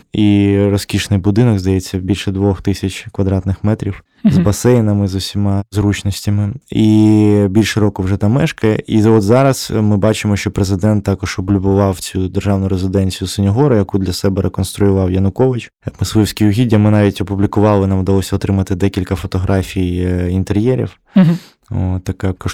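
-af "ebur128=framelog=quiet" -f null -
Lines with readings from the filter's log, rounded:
Integrated loudness:
  I:         -14.3 LUFS
  Threshold: -24.3 LUFS
Loudness range:
  LRA:         3.1 LU
  Threshold: -34.3 LUFS
  LRA low:   -15.8 LUFS
  LRA high:  -12.7 LUFS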